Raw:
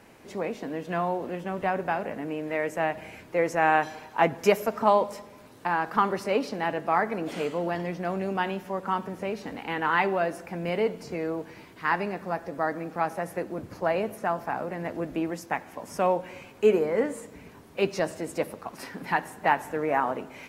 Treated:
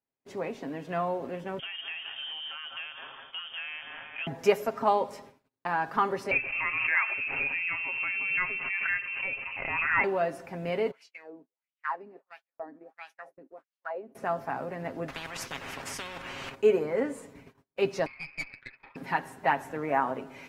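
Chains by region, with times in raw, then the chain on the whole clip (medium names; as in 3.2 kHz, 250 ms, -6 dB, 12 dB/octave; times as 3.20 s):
1.59–4.27 s: feedback echo behind a high-pass 192 ms, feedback 60%, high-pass 2.5 kHz, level -4.5 dB + compression 4:1, threshold -32 dBFS + frequency inversion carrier 3.4 kHz
6.31–10.04 s: frequency inversion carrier 2.9 kHz + swell ahead of each attack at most 32 dB/s
10.91–14.15 s: wah-wah 1.5 Hz 240–3200 Hz, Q 3.8 + RIAA curve recording
15.08–16.55 s: low-pass 2.3 kHz 6 dB/octave + level held to a coarse grid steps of 10 dB + spectrum-flattening compressor 10:1
18.06–18.96 s: high-pass 180 Hz + frequency inversion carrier 2.8 kHz + valve stage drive 27 dB, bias 0.8
whole clip: treble shelf 8.2 kHz -6 dB; gate -46 dBFS, range -39 dB; comb 7.4 ms, depth 44%; trim -3.5 dB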